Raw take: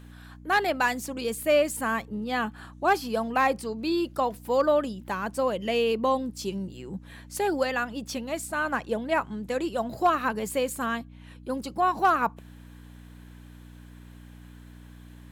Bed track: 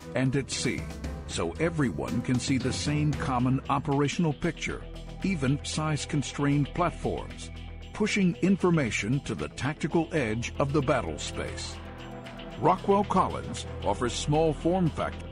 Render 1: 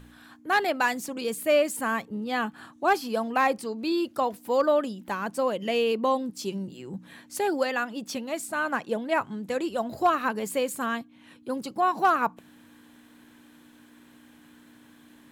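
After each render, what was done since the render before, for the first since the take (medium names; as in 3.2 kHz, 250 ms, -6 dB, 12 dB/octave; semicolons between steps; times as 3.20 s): de-hum 60 Hz, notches 3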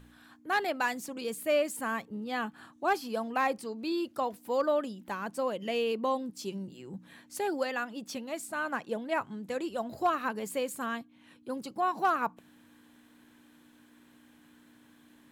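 trim -5.5 dB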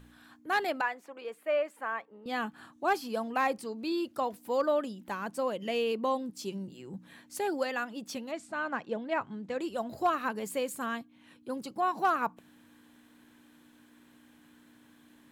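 0.81–2.26 s: three-band isolator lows -24 dB, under 410 Hz, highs -21 dB, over 2.6 kHz; 8.31–9.60 s: distance through air 100 m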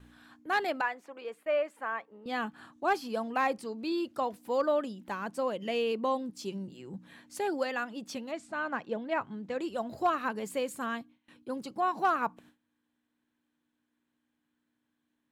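gate with hold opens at -48 dBFS; treble shelf 11 kHz -9.5 dB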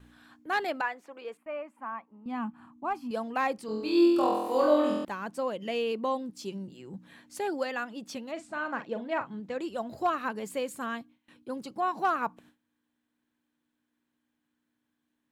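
1.37–3.11 s: FFT filter 170 Hz 0 dB, 240 Hz +6 dB, 450 Hz -14 dB, 1 kHz +2 dB, 1.7 kHz -11 dB, 2.5 kHz -6 dB, 3.7 kHz -17 dB, 8.4 kHz -12 dB; 3.66–5.05 s: flutter echo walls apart 4 m, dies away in 1.1 s; 8.32–9.40 s: doubling 43 ms -9.5 dB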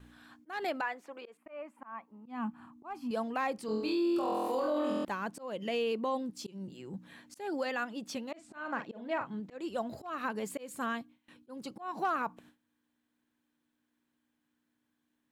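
peak limiter -24.5 dBFS, peak gain reduction 11.5 dB; slow attack 208 ms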